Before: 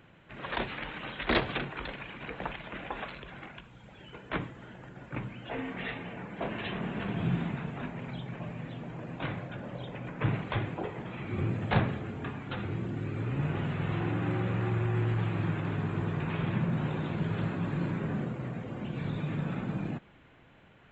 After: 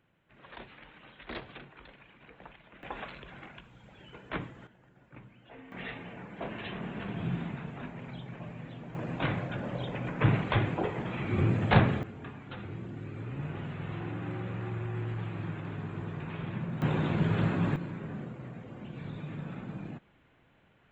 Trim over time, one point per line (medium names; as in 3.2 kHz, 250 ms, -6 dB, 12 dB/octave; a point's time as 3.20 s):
-14 dB
from 2.83 s -2.5 dB
from 4.67 s -14 dB
from 5.72 s -3.5 dB
from 8.95 s +4.5 dB
from 12.03 s -6 dB
from 16.82 s +4 dB
from 17.76 s -6.5 dB